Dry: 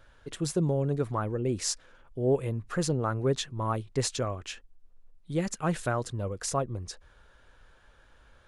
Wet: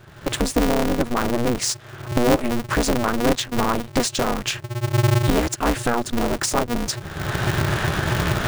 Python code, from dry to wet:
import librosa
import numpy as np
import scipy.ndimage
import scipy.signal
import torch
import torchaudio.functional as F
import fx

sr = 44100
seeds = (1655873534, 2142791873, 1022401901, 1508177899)

y = scipy.ndimage.median_filter(x, 3, mode='constant')
y = fx.recorder_agc(y, sr, target_db=-21.0, rise_db_per_s=42.0, max_gain_db=30)
y = y * np.sign(np.sin(2.0 * np.pi * 120.0 * np.arange(len(y)) / sr))
y = y * librosa.db_to_amplitude(7.5)